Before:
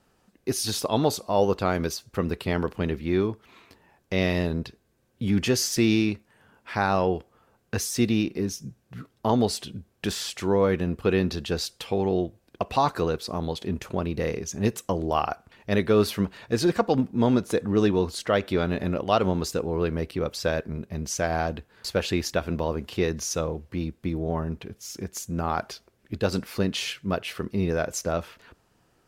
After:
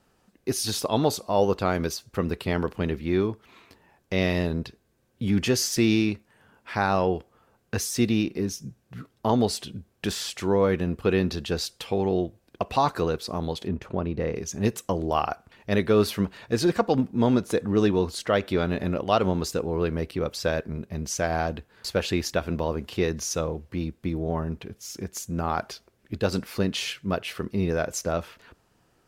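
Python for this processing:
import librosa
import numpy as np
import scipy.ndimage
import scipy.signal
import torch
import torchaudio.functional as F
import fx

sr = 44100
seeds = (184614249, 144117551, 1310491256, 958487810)

y = fx.lowpass(x, sr, hz=1600.0, slope=6, at=(13.67, 14.35), fade=0.02)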